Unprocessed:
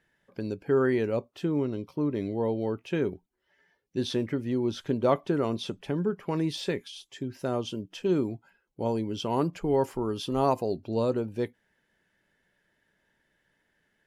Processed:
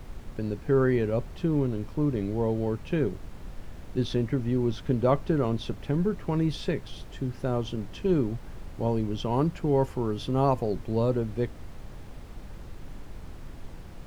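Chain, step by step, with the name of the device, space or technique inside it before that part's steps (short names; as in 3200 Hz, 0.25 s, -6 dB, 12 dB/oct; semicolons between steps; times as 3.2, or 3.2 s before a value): car interior (bell 130 Hz +7.5 dB 0.86 oct; high shelf 4500 Hz -7.5 dB; brown noise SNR 10 dB)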